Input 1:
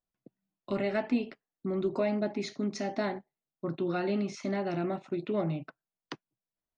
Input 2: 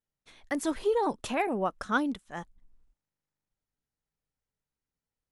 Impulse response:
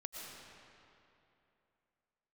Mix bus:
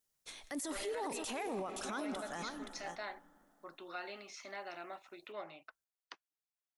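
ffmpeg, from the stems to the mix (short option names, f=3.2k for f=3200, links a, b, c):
-filter_complex "[0:a]highpass=910,volume=-4.5dB[a];[1:a]bass=f=250:g=-6,treble=f=4k:g=11,acompressor=threshold=-32dB:ratio=6,volume=0.5dB,asplit=3[b][c][d];[c]volume=-7.5dB[e];[d]volume=-9dB[f];[2:a]atrim=start_sample=2205[g];[e][g]afir=irnorm=-1:irlink=0[h];[f]aecho=0:1:523:1[i];[a][b][h][i]amix=inputs=4:normalize=0,alimiter=level_in=8dB:limit=-24dB:level=0:latency=1:release=20,volume=-8dB"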